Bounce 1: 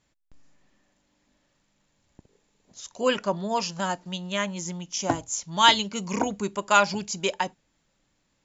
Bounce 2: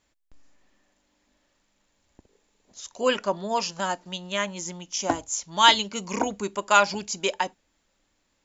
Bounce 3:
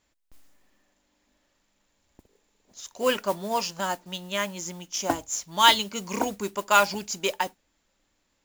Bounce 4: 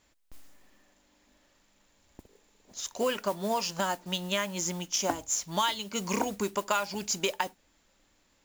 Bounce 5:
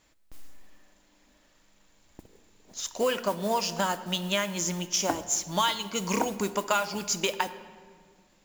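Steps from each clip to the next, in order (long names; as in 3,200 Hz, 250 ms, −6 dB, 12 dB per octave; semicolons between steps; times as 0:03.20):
parametric band 140 Hz −11 dB 0.83 octaves; level +1 dB
noise that follows the level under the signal 17 dB; level −1 dB
downward compressor 8 to 1, threshold −30 dBFS, peak gain reduction 18.5 dB; level +4.5 dB
rectangular room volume 3,000 cubic metres, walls mixed, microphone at 0.59 metres; level +2 dB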